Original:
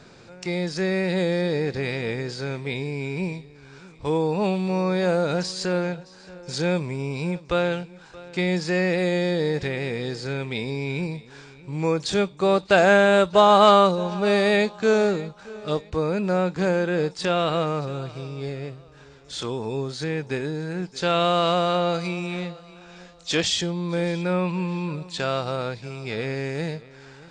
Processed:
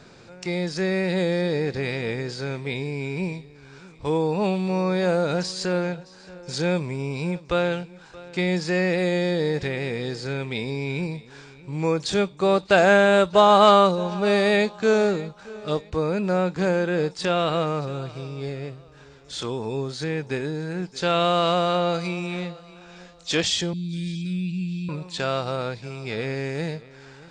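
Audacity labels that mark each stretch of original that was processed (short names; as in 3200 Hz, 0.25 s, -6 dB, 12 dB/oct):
23.730000	24.890000	Chebyshev band-stop 250–2900 Hz, order 3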